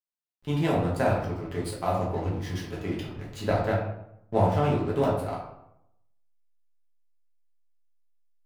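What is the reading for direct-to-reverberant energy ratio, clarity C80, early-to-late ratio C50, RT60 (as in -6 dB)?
-5.5 dB, 7.0 dB, 4.0 dB, 0.80 s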